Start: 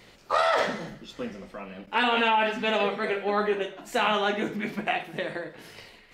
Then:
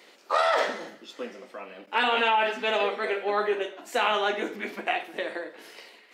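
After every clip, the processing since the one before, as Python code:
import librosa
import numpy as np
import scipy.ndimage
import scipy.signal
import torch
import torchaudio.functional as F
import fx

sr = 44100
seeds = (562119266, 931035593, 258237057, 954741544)

y = scipy.signal.sosfilt(scipy.signal.butter(4, 280.0, 'highpass', fs=sr, output='sos'), x)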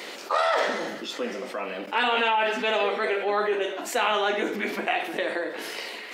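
y = fx.env_flatten(x, sr, amount_pct=50)
y = y * librosa.db_to_amplitude(-1.0)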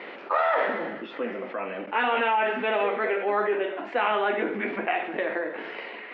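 y = scipy.signal.sosfilt(scipy.signal.butter(4, 2500.0, 'lowpass', fs=sr, output='sos'), x)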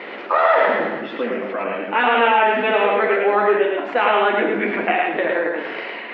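y = x + 10.0 ** (-3.0 / 20.0) * np.pad(x, (int(108 * sr / 1000.0), 0))[:len(x)]
y = y * librosa.db_to_amplitude(6.5)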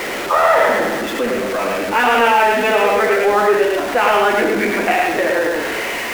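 y = x + 0.5 * 10.0 ** (-22.0 / 20.0) * np.sign(x)
y = y * librosa.db_to_amplitude(1.0)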